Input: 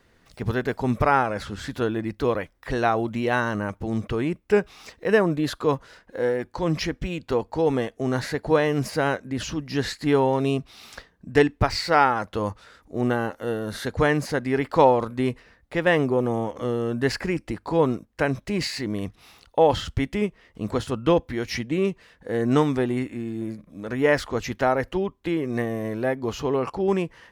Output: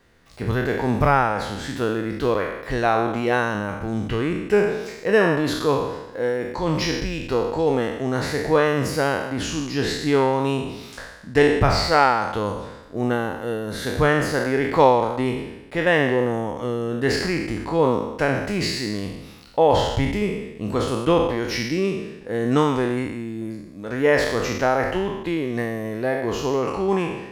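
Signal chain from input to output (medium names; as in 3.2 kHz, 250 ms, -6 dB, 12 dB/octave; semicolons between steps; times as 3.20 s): spectral sustain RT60 1.00 s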